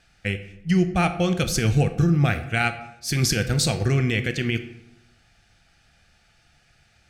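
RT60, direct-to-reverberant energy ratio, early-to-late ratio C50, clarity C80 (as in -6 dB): 0.90 s, 9.0 dB, 11.5 dB, 14.5 dB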